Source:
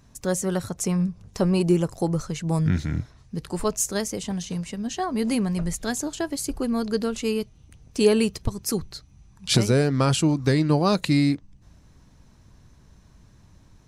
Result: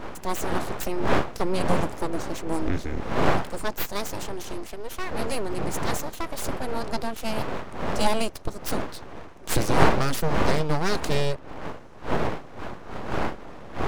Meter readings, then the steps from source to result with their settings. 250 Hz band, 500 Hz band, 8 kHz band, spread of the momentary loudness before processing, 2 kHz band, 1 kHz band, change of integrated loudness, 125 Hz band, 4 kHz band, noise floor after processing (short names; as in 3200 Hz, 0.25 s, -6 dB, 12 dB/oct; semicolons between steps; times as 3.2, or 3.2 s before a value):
-6.5 dB, -2.0 dB, -6.0 dB, 11 LU, +3.5 dB, +5.5 dB, -3.5 dB, -6.0 dB, -3.0 dB, -41 dBFS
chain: wind noise 550 Hz -26 dBFS; full-wave rectifier; gain -1 dB